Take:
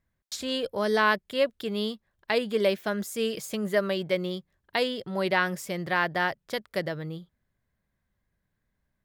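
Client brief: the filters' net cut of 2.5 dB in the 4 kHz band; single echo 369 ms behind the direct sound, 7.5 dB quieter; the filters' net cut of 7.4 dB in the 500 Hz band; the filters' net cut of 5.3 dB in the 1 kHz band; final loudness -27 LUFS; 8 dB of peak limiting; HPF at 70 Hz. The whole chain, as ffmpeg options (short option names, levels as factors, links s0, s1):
-af "highpass=70,equalizer=f=500:t=o:g=-8,equalizer=f=1000:t=o:g=-4,equalizer=f=4000:t=o:g=-3,alimiter=limit=0.0891:level=0:latency=1,aecho=1:1:369:0.422,volume=2.11"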